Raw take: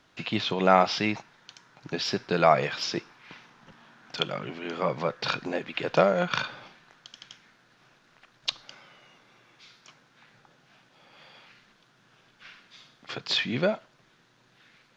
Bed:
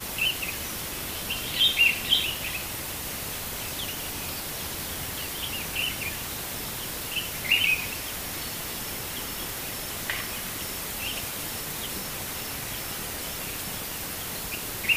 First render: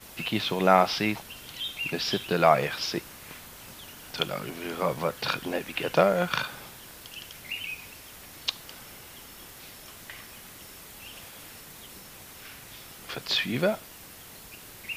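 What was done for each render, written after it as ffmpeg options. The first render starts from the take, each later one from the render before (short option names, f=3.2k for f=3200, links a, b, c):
-filter_complex "[1:a]volume=-13dB[a];[0:a][a]amix=inputs=2:normalize=0"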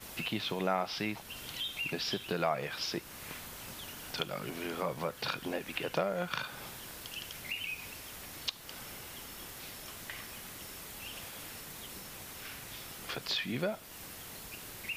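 -af "acompressor=threshold=-37dB:ratio=2"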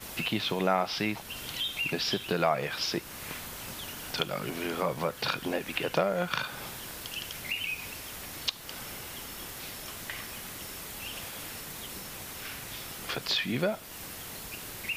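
-af "volume=5dB"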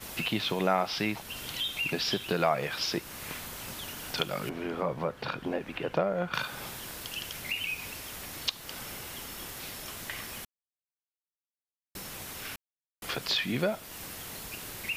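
-filter_complex "[0:a]asettb=1/sr,asplit=3[a][b][c];[a]atrim=end=4.494[d];[b]atrim=start=4.49:end=6.34,asetpts=PTS-STARTPTS,afade=t=in:d=0.004:c=qsin,afade=t=out:st=1.846:d=0.004:c=qsin,lowpass=f=1.3k:p=1[e];[c]atrim=start=6.336[f];[d][e]acrossfade=d=0.004:c1=hsin:c2=qsin[g];[g][f]acrossfade=d=0.004:c1=qsin:c2=hsin,asplit=5[h][i][j][k][l];[h]atrim=end=10.45,asetpts=PTS-STARTPTS,afade=t=out:st=10.446:d=0.004:c=hsin[m];[i]atrim=start=10.45:end=11.95,asetpts=PTS-STARTPTS,volume=0[n];[j]atrim=start=11.95:end=12.56,asetpts=PTS-STARTPTS,afade=t=in:d=0.004:c=hsin,afade=t=out:st=0.606:d=0.004:c=hsin[o];[k]atrim=start=12.56:end=13.02,asetpts=PTS-STARTPTS,volume=0[p];[l]atrim=start=13.02,asetpts=PTS-STARTPTS,afade=t=in:d=0.004:c=hsin[q];[m][n][o][p][q]concat=n=5:v=0:a=1"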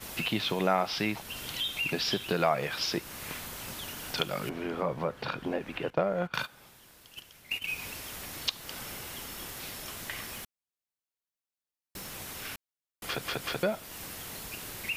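-filter_complex "[0:a]asettb=1/sr,asplit=3[a][b][c];[a]atrim=end=5.904[d];[b]atrim=start=5.9:end=7.68,asetpts=PTS-STARTPTS,afade=t=in:d=0.004:c=qsin,afade=t=out:st=1.776:d=0.004:c=qsin,agate=range=-15dB:threshold=-35dB:ratio=16:release=100:detection=peak[e];[c]atrim=start=7.676[f];[d][e]acrossfade=d=0.004:c1=hsin:c2=qsin[g];[g][f]acrossfade=d=0.004:c1=qsin:c2=hsin,asettb=1/sr,asplit=3[h][i][j];[h]atrim=end=10.364[k];[i]atrim=start=10.36:end=12.16,asetpts=PTS-STARTPTS,afade=t=in:d=0.004:c=qsin,afade=t=out:st=1.796:d=0.004:c=qsin,asoftclip=type=hard:threshold=-35.5dB[l];[j]atrim=start=12.156[m];[k][l]acrossfade=d=0.004:c1=hsin:c2=qsin[n];[n][m]acrossfade=d=0.004:c1=qsin:c2=hsin,asplit=4[o][p][q][r];[o]atrim=end=13.252[s];[p]atrim=start=13.058:end=13.252[t];[q]atrim=start=13.058:end=13.252[u];[r]atrim=start=13.628[v];[s][t]acrossfade=d=0.004:c1=hsin:c2=hsin[w];[w][u]acrossfade=d=0.004:c1=hsin:c2=hsin[x];[x][v]acrossfade=d=0.004:c1=hsin:c2=hsin"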